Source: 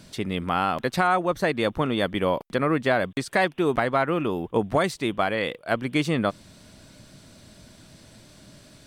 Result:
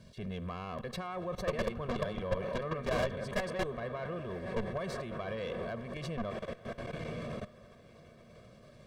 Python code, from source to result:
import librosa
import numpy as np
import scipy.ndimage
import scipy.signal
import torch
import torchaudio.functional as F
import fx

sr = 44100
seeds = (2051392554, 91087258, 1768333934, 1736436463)

y = fx.reverse_delay(x, sr, ms=132, wet_db=-0.5, at=(1.26, 3.64))
y = fx.peak_eq(y, sr, hz=240.0, db=11.0, octaves=0.3)
y = fx.echo_diffused(y, sr, ms=1111, feedback_pct=44, wet_db=-13.0)
y = fx.rev_schroeder(y, sr, rt60_s=2.1, comb_ms=31, drr_db=19.5)
y = fx.level_steps(y, sr, step_db=18)
y = fx.quant_dither(y, sr, seeds[0], bits=12, dither='none')
y = fx.lowpass(y, sr, hz=3900.0, slope=6)
y = fx.tube_stage(y, sr, drive_db=29.0, bias=0.35)
y = fx.low_shelf(y, sr, hz=440.0, db=5.0)
y = y + 0.9 * np.pad(y, (int(1.8 * sr / 1000.0), 0))[:len(y)]
y = y * librosa.db_to_amplitude(-3.5)